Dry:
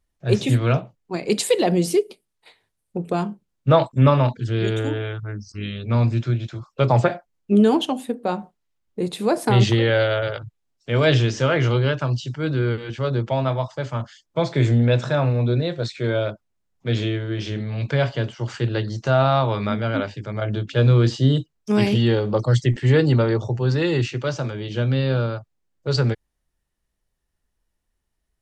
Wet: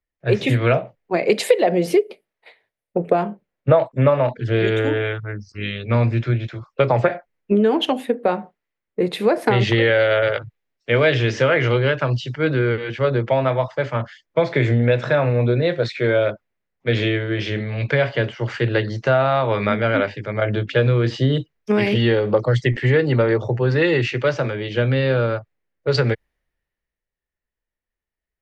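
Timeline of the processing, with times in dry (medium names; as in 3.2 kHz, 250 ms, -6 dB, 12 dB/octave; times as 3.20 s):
0.71–4.62 s: peaking EQ 640 Hz +6.5 dB
whole clip: graphic EQ 500/2000/8000 Hz +7/+11/-9 dB; compression 6:1, threshold -16 dBFS; three bands expanded up and down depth 40%; trim +2.5 dB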